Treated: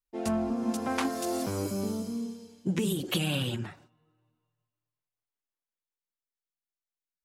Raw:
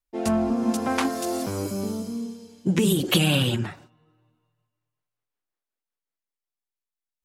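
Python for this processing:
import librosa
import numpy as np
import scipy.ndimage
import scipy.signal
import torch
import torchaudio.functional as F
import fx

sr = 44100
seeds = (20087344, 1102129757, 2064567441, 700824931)

y = fx.rider(x, sr, range_db=3, speed_s=0.5)
y = y * 10.0 ** (-6.0 / 20.0)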